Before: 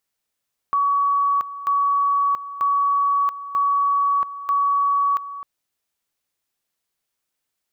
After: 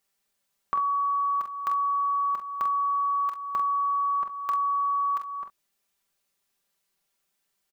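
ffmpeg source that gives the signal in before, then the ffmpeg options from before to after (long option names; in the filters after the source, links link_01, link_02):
-f lavfi -i "aevalsrc='pow(10,(-16-14*gte(mod(t,0.94),0.68))/20)*sin(2*PI*1130*t)':duration=4.7:sample_rate=44100"
-filter_complex "[0:a]aecho=1:1:5.1:0.65,acompressor=threshold=-30dB:ratio=2,asplit=2[link_01][link_02];[link_02]aecho=0:1:27|45|65:0.224|0.447|0.133[link_03];[link_01][link_03]amix=inputs=2:normalize=0"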